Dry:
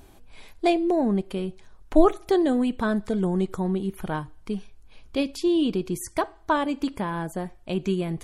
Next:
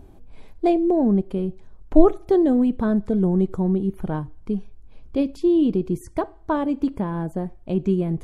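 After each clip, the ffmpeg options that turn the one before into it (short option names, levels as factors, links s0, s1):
-af "tiltshelf=f=970:g=8.5,volume=0.75"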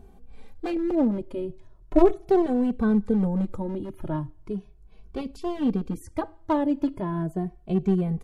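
-filter_complex "[0:a]aeval=exprs='clip(val(0),-1,0.119)':c=same,asplit=2[s0][s1];[s1]adelay=2.2,afreqshift=0.38[s2];[s0][s2]amix=inputs=2:normalize=1"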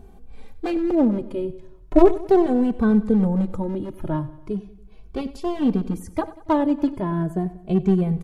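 -af "aecho=1:1:94|188|282|376:0.141|0.072|0.0367|0.0187,volume=1.58"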